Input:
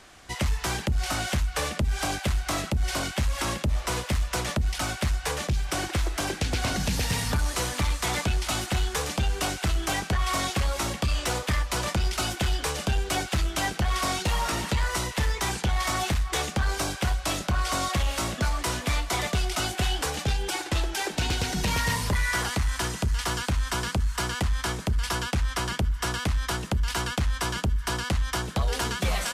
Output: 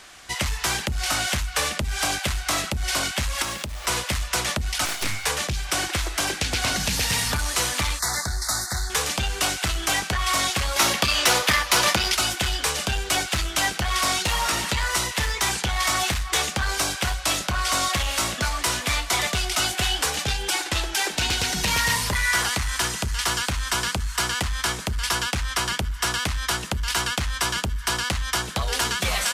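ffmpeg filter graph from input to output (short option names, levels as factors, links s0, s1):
-filter_complex "[0:a]asettb=1/sr,asplit=3[s0][s1][s2];[s0]atrim=end=3.424[s3];[s1]atrim=start=3.42:end=3.86,asetpts=PTS-STARTPTS,afade=t=in:d=0.004:c=qsin,afade=t=out:st=0.436:d=0.004:c=qsin,acompressor=threshold=0.0282:ratio=2.5:attack=3.2:release=140:knee=1:detection=peak,acrusher=bits=7:mix=0:aa=0.5[s4];[s2]atrim=start=3.856[s5];[s3][s4]acrossfade=d=0.004:c1=hsin:c2=qsin[s6];[s6][s5]acrossfade=d=0.004:c1=qsin:c2=hsin,asettb=1/sr,asplit=3[s7][s8][s9];[s7]atrim=end=4.854[s10];[s8]atrim=start=4.85:end=5.25,asetpts=PTS-STARTPTS,afade=t=in:d=0.004:c=qsin,afade=t=out:st=0.396:d=0.004:c=qsin,asplit=2[s11][s12];[s12]adelay=33,volume=0.447[s13];[s11][s13]amix=inputs=2:normalize=0,atrim=end_sample=17640,aeval=exprs='val(0)+0.0112*sin(2*PI*2200*n/s)':c=same,aeval=exprs='abs(val(0))':c=same[s14];[s9]atrim=start=5.246[s15];[s10][s14]acrossfade=d=0.004:c1=hsin:c2=qsin[s16];[s16][s15]acrossfade=d=0.004:c1=qsin:c2=hsin,asettb=1/sr,asplit=3[s17][s18][s19];[s17]atrim=end=7.994[s20];[s18]atrim=start=7.99:end=8.9,asetpts=PTS-STARTPTS,afade=t=in:d=0.004:c=qsin,afade=t=out:st=0.906:d=0.004:c=qsin,asuperstop=centerf=2800:order=8:qfactor=1.4,equalizer=f=370:w=0.62:g=-8[s21];[s19]atrim=start=8.896[s22];[s20][s21]acrossfade=d=0.004:c1=hsin:c2=qsin[s23];[s23][s22]acrossfade=d=0.004:c1=qsin:c2=hsin,asettb=1/sr,asplit=3[s24][s25][s26];[s24]atrim=end=10.764[s27];[s25]atrim=start=10.76:end=12.15,asetpts=PTS-STARTPTS,afade=t=in:d=0.004:c=qsin,afade=t=out:st=1.386:d=0.004:c=qsin,equalizer=f=8000:t=o:w=0.4:g=-5,acontrast=61,highpass=f=200:p=1[s28];[s26]atrim=start=12.146[s29];[s27][s28]acrossfade=d=0.004:c1=hsin:c2=qsin[s30];[s30][s29]acrossfade=d=0.004:c1=qsin:c2=hsin,tiltshelf=f=830:g=-5,acontrast=88,volume=0.596"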